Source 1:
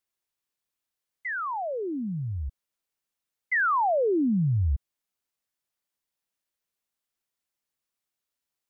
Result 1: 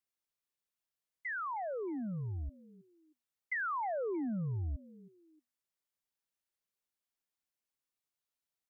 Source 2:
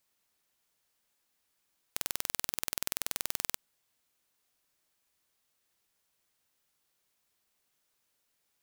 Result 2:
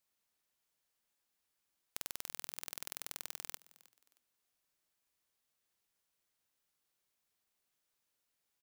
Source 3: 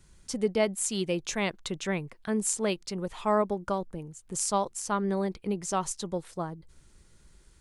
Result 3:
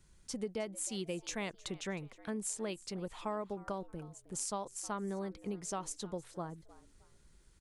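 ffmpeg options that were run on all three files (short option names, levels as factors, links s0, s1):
-filter_complex "[0:a]acompressor=threshold=0.0398:ratio=5,asplit=2[s0][s1];[s1]asplit=2[s2][s3];[s2]adelay=313,afreqshift=120,volume=0.1[s4];[s3]adelay=626,afreqshift=240,volume=0.0309[s5];[s4][s5]amix=inputs=2:normalize=0[s6];[s0][s6]amix=inputs=2:normalize=0,volume=0.473"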